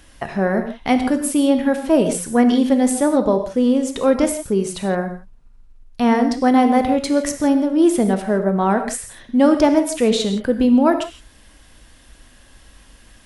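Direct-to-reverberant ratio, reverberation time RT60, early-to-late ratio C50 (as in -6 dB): 6.5 dB, not exponential, 8.5 dB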